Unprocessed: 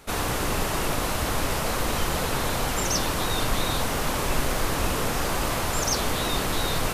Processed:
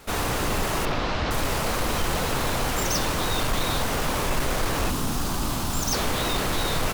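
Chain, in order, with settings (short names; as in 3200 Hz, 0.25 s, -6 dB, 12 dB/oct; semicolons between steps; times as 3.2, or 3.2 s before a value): CVSD 64 kbps; careless resampling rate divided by 2×, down none, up hold; 4.9–5.93 graphic EQ 250/500/2000 Hz +5/-10/-9 dB; soft clip -17.5 dBFS, distortion -20 dB; 0.85–1.31 LPF 5000 Hz 24 dB/oct; feedback echo 67 ms, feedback 58%, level -19.5 dB; gain +2 dB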